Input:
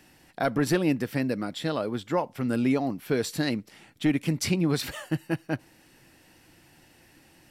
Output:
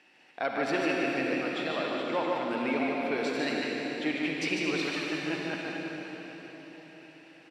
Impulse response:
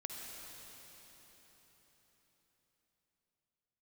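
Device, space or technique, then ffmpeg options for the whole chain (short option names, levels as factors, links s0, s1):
station announcement: -filter_complex "[0:a]highpass=370,lowpass=4200,equalizer=f=2500:t=o:w=0.56:g=7,aecho=1:1:148.7|224.5:0.631|0.251[s0];[1:a]atrim=start_sample=2205[s1];[s0][s1]afir=irnorm=-1:irlink=0"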